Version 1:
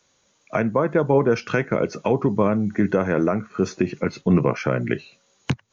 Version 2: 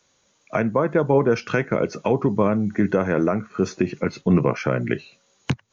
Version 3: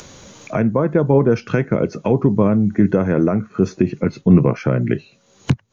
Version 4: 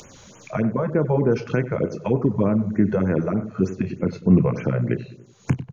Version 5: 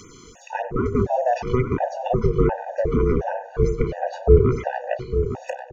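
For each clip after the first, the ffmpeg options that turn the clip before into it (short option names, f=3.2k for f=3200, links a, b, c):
-af anull
-af "lowshelf=f=430:g=11,acompressor=mode=upward:threshold=-20dB:ratio=2.5,volume=-2.5dB"
-filter_complex "[0:a]asplit=2[a][b];[b]adelay=32,volume=-13dB[c];[a][c]amix=inputs=2:normalize=0,asplit=2[d][e];[e]adelay=95,lowpass=f=1.4k:p=1,volume=-12.5dB,asplit=2[f][g];[g]adelay=95,lowpass=f=1.4k:p=1,volume=0.5,asplit=2[h][i];[i]adelay=95,lowpass=f=1.4k:p=1,volume=0.5,asplit=2[j][k];[k]adelay=95,lowpass=f=1.4k:p=1,volume=0.5,asplit=2[l][m];[m]adelay=95,lowpass=f=1.4k:p=1,volume=0.5[n];[f][h][j][l][n]amix=inputs=5:normalize=0[o];[d][o]amix=inputs=2:normalize=0,afftfilt=real='re*(1-between(b*sr/1024,240*pow(4600/240,0.5+0.5*sin(2*PI*3.3*pts/sr))/1.41,240*pow(4600/240,0.5+0.5*sin(2*PI*3.3*pts/sr))*1.41))':imag='im*(1-between(b*sr/1024,240*pow(4600/240,0.5+0.5*sin(2*PI*3.3*pts/sr))/1.41,240*pow(4600/240,0.5+0.5*sin(2*PI*3.3*pts/sr))*1.41))':win_size=1024:overlap=0.75,volume=-4.5dB"
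-af "aeval=exprs='val(0)*sin(2*PI*250*n/s)':c=same,aecho=1:1:860|1720|2580:0.355|0.0993|0.0278,afftfilt=real='re*gt(sin(2*PI*1.4*pts/sr)*(1-2*mod(floor(b*sr/1024/490),2)),0)':imag='im*gt(sin(2*PI*1.4*pts/sr)*(1-2*mod(floor(b*sr/1024/490),2)),0)':win_size=1024:overlap=0.75,volume=6dB"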